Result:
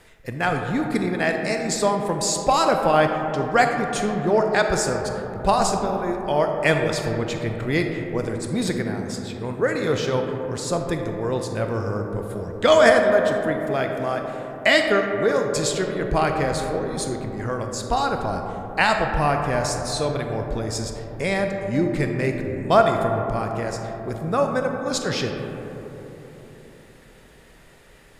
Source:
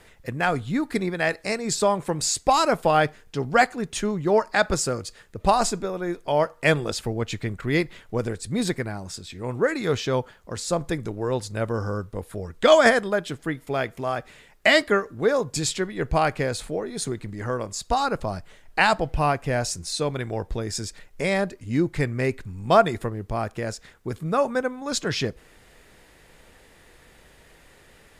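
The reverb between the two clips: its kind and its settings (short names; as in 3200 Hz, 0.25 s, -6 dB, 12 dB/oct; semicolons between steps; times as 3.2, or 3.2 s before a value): digital reverb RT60 3.9 s, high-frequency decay 0.25×, pre-delay 0 ms, DRR 3.5 dB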